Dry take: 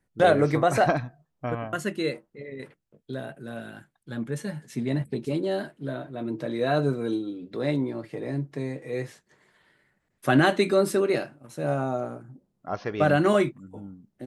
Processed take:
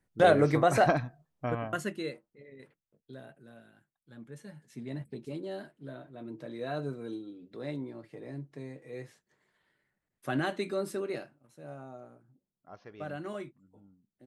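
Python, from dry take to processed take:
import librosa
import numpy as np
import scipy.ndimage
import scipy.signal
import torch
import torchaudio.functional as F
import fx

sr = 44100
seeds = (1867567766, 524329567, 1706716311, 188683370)

y = fx.gain(x, sr, db=fx.line((1.71, -2.5), (2.27, -13.0), (3.31, -13.0), (3.74, -19.5), (5.01, -11.5), (11.18, -11.5), (11.59, -18.5)))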